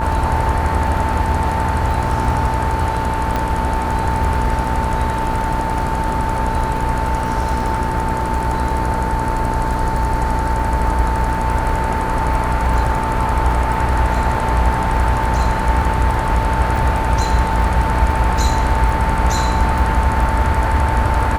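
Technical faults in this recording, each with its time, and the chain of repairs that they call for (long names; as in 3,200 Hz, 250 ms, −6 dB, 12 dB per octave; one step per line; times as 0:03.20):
mains buzz 60 Hz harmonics 28 −23 dBFS
surface crackle 27 per second −23 dBFS
whistle 890 Hz −21 dBFS
0:03.36: click −7 dBFS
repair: click removal
hum removal 60 Hz, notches 28
notch filter 890 Hz, Q 30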